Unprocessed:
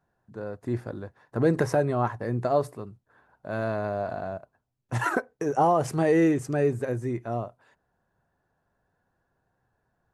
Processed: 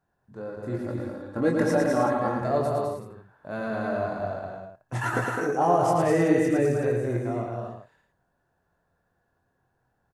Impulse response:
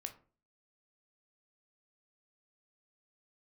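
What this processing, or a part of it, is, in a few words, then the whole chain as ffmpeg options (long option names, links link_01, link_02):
slapback doubling: -filter_complex "[0:a]asplit=3[link_01][link_02][link_03];[link_02]adelay=23,volume=-4.5dB[link_04];[link_03]adelay=112,volume=-4dB[link_05];[link_01][link_04][link_05]amix=inputs=3:normalize=0,asettb=1/sr,asplit=3[link_06][link_07][link_08];[link_06]atrim=end=0.804[link_09];[link_07]atrim=start=0.8:end=2.41,asetpts=PTS-STARTPTS,afade=type=in:duration=0.004:curve=qsin,afade=type=out:start_time=1.606:duration=0.004:curve=qsin,aecho=1:1:3.6:0.64,atrim=end_sample=71001[link_10];[link_08]atrim=start=2.406[link_11];[link_09][link_10]acrossfade=duration=0.004:curve1=hsin:curve2=qsin[link_12];[link_12][link_11]acrossfade=duration=0.004:curve1=qsin:curve2=hsin,aecho=1:1:207|265.3:0.631|0.447,volume=-3dB"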